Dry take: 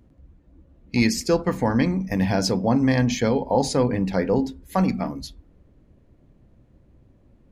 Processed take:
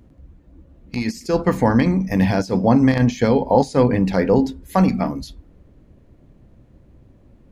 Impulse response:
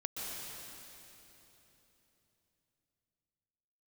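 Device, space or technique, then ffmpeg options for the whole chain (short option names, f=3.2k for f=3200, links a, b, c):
de-esser from a sidechain: -filter_complex "[0:a]asplit=2[a][b];[b]highpass=5.3k,apad=whole_len=331566[c];[a][c]sidechaincompress=threshold=-40dB:ratio=16:attack=0.76:release=54,volume=5.5dB"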